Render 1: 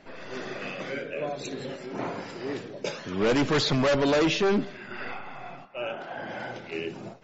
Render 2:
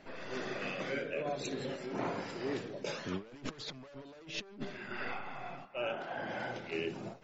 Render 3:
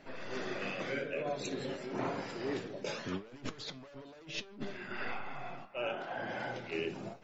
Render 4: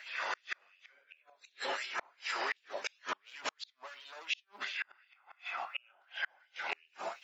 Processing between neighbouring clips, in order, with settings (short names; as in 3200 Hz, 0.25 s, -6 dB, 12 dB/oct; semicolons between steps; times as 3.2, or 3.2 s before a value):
negative-ratio compressor -31 dBFS, ratio -0.5; gain -7 dB
flange 0.93 Hz, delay 6.8 ms, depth 4.5 ms, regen +77%; gain +4.5 dB
LFO high-pass sine 2.8 Hz 850–3000 Hz; flipped gate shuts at -31 dBFS, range -36 dB; gain +8 dB